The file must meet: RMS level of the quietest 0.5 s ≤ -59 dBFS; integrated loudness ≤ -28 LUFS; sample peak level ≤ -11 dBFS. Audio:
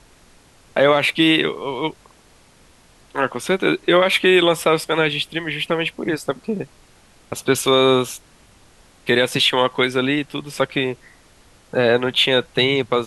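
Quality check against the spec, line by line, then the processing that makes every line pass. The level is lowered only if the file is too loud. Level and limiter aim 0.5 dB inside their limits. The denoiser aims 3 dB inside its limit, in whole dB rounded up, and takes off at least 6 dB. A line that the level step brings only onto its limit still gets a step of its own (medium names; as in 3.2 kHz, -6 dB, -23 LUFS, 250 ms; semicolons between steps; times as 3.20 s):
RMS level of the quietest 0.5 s -52 dBFS: fail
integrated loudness -18.5 LUFS: fail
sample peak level -4.0 dBFS: fail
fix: trim -10 dB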